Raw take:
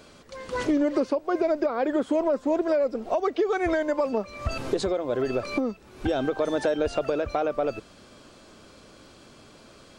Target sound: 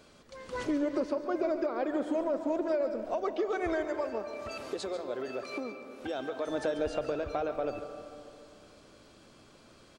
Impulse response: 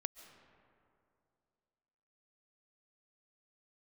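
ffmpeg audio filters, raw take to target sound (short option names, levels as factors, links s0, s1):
-filter_complex "[0:a]asettb=1/sr,asplit=3[s0][s1][s2];[s0]atrim=end=3.844[s3];[s1]atrim=start=3.84:end=6.49,asetpts=PTS-STARTPTS,afade=t=in:d=0.004:c=qsin,afade=t=out:st=2.646:d=0.004:c=qsin,highpass=f=450:p=1[s4];[s2]atrim=start=6.486[s5];[s3][s4]acrossfade=d=0.004:c1=hsin:c2=qsin[s6];[s6][s5]acrossfade=d=0.004:c1=qsin:c2=hsin,aecho=1:1:140:0.224[s7];[1:a]atrim=start_sample=2205[s8];[s7][s8]afir=irnorm=-1:irlink=0,volume=0.596"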